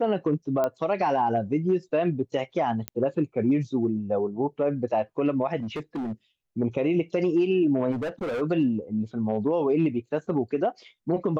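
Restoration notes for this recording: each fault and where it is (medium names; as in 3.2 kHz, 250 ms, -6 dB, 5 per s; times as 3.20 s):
0.64 s: pop -14 dBFS
2.88 s: pop -13 dBFS
5.59–6.13 s: clipped -27.5 dBFS
7.91–8.42 s: clipped -26.5 dBFS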